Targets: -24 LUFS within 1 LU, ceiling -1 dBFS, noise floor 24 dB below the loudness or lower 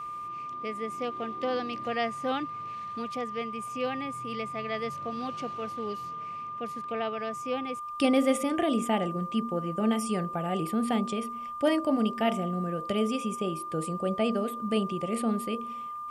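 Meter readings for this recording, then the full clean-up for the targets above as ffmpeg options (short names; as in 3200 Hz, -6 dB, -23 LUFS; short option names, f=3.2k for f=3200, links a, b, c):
steady tone 1200 Hz; tone level -35 dBFS; loudness -30.5 LUFS; peak -13.5 dBFS; loudness target -24.0 LUFS
-> -af "bandreject=f=1.2k:w=30"
-af "volume=6.5dB"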